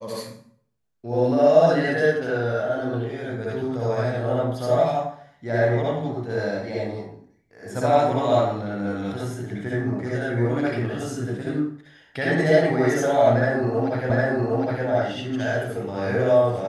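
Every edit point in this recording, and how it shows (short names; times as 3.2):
14.1 repeat of the last 0.76 s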